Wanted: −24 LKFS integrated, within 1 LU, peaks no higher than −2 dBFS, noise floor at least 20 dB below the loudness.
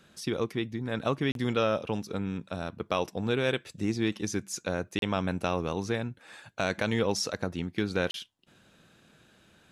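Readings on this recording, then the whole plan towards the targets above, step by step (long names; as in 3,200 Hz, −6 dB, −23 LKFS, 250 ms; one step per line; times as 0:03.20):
number of dropouts 3; longest dropout 32 ms; integrated loudness −31.0 LKFS; sample peak −13.5 dBFS; target loudness −24.0 LKFS
→ repair the gap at 0:01.32/0:04.99/0:08.11, 32 ms
level +7 dB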